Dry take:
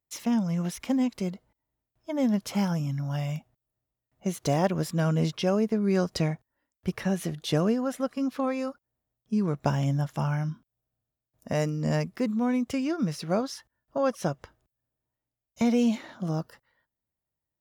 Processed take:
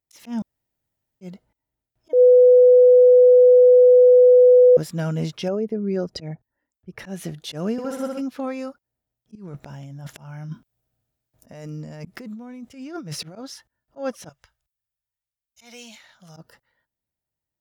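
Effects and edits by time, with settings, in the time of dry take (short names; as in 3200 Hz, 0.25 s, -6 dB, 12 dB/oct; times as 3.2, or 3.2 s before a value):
0.42–1.21 room tone
2.13–4.77 bleep 498 Hz -8 dBFS
5.48–6.99 formant sharpening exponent 1.5
7.72–8.21 flutter echo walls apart 10.6 m, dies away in 0.95 s
9.35–13.36 negative-ratio compressor -35 dBFS
14.29–16.37 passive tone stack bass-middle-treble 10-0-10
whole clip: notch 1100 Hz, Q 9.4; auto swell 0.128 s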